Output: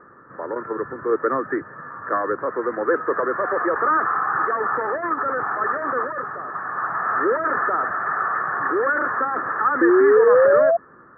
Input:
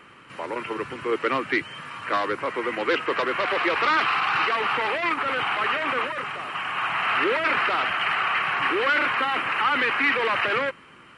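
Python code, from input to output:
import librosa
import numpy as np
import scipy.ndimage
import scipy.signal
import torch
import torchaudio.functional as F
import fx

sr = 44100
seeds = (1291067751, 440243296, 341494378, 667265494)

y = fx.spec_paint(x, sr, seeds[0], shape='rise', start_s=9.81, length_s=0.96, low_hz=330.0, high_hz=690.0, level_db=-18.0)
y = scipy.signal.sosfilt(scipy.signal.cheby1(6, 6, 1800.0, 'lowpass', fs=sr, output='sos'), y)
y = F.gain(torch.from_numpy(y), 5.0).numpy()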